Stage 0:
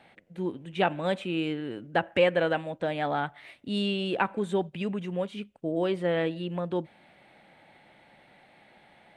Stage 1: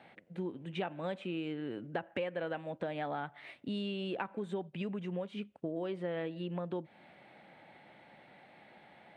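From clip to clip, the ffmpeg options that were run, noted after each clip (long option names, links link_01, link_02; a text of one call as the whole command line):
ffmpeg -i in.wav -af "lowpass=frequency=3100:poles=1,acompressor=threshold=-35dB:ratio=5,highpass=95" out.wav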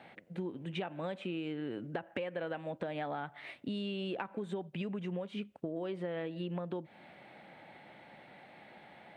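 ffmpeg -i in.wav -af "acompressor=threshold=-38dB:ratio=3,volume=3dB" out.wav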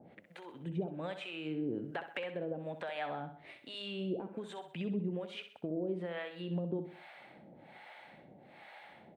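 ffmpeg -i in.wav -filter_complex "[0:a]acrossover=split=590[link_01][link_02];[link_01]aeval=exprs='val(0)*(1-1/2+1/2*cos(2*PI*1.2*n/s))':channel_layout=same[link_03];[link_02]aeval=exprs='val(0)*(1-1/2-1/2*cos(2*PI*1.2*n/s))':channel_layout=same[link_04];[link_03][link_04]amix=inputs=2:normalize=0,asplit=2[link_05][link_06];[link_06]aecho=0:1:64|128|192|256:0.316|0.133|0.0558|0.0234[link_07];[link_05][link_07]amix=inputs=2:normalize=0,volume=4dB" out.wav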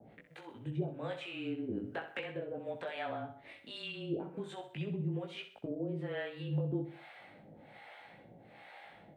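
ffmpeg -i in.wav -af "afreqshift=-23,flanger=delay=18:depth=2.4:speed=0.36,volume=3dB" out.wav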